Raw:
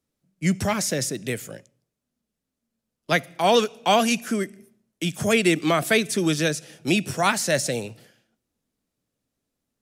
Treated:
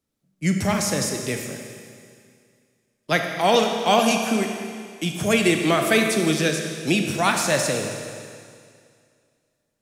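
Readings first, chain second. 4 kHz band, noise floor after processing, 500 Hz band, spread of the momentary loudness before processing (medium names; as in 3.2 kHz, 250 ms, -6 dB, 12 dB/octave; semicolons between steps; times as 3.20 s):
+1.5 dB, -74 dBFS, +1.5 dB, 11 LU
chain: Schroeder reverb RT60 2.2 s, combs from 28 ms, DRR 3.5 dB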